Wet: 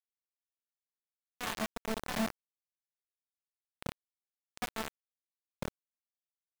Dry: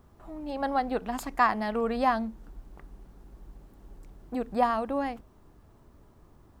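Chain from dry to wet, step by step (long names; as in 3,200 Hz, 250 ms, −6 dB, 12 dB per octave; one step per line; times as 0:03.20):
wind on the microphone 530 Hz −43 dBFS
low shelf with overshoot 240 Hz +10.5 dB, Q 3
resonators tuned to a chord D3 major, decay 0.62 s
hum removal 49.6 Hz, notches 28
bit-depth reduction 6 bits, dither none
level +4.5 dB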